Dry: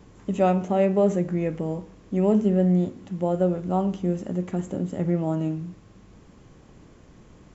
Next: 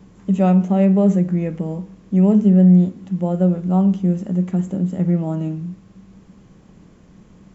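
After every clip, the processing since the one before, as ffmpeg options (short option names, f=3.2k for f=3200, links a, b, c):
-af "equalizer=f=190:w=3.8:g=11.5"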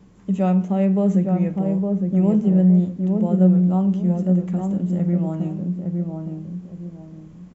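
-filter_complex "[0:a]asplit=2[a][b];[b]adelay=861,lowpass=f=840:p=1,volume=-3dB,asplit=2[c][d];[d]adelay=861,lowpass=f=840:p=1,volume=0.34,asplit=2[e][f];[f]adelay=861,lowpass=f=840:p=1,volume=0.34,asplit=2[g][h];[h]adelay=861,lowpass=f=840:p=1,volume=0.34[i];[a][c][e][g][i]amix=inputs=5:normalize=0,volume=-4dB"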